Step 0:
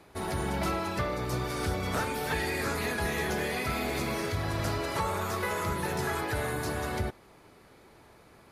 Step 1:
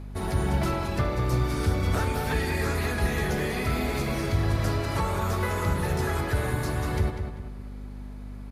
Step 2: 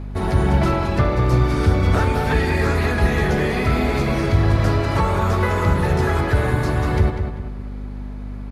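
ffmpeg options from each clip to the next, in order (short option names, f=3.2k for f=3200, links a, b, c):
-filter_complex "[0:a]lowshelf=f=180:g=10.5,aeval=exprs='val(0)+0.0141*(sin(2*PI*50*n/s)+sin(2*PI*2*50*n/s)/2+sin(2*PI*3*50*n/s)/3+sin(2*PI*4*50*n/s)/4+sin(2*PI*5*50*n/s)/5)':c=same,asplit=2[a][b];[b]adelay=196,lowpass=f=3.7k:p=1,volume=-7dB,asplit=2[c][d];[d]adelay=196,lowpass=f=3.7k:p=1,volume=0.39,asplit=2[e][f];[f]adelay=196,lowpass=f=3.7k:p=1,volume=0.39,asplit=2[g][h];[h]adelay=196,lowpass=f=3.7k:p=1,volume=0.39,asplit=2[i][j];[j]adelay=196,lowpass=f=3.7k:p=1,volume=0.39[k];[c][e][g][i][k]amix=inputs=5:normalize=0[l];[a][l]amix=inputs=2:normalize=0"
-af "aemphasis=mode=reproduction:type=50kf,volume=8.5dB"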